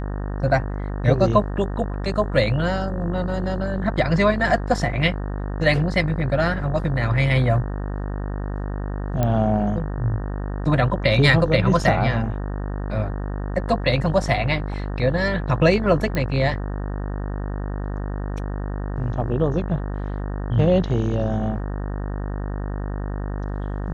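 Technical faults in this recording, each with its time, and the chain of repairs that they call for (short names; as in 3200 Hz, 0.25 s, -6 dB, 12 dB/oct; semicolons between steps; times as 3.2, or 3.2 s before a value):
buzz 50 Hz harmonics 37 -27 dBFS
9.23 pop -9 dBFS
16.15 pop -12 dBFS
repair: de-click; de-hum 50 Hz, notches 37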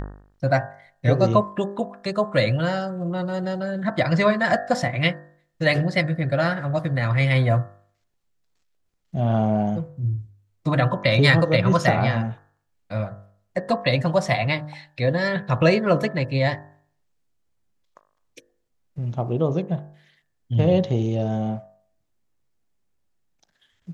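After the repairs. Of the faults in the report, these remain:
none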